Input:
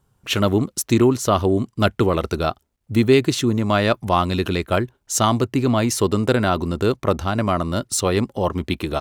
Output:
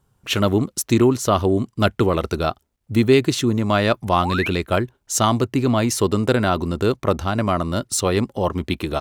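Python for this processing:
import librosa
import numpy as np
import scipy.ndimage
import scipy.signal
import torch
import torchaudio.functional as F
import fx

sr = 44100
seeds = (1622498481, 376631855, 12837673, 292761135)

y = fx.spec_paint(x, sr, seeds[0], shape='rise', start_s=4.23, length_s=0.27, low_hz=680.0, high_hz=2900.0, level_db=-26.0)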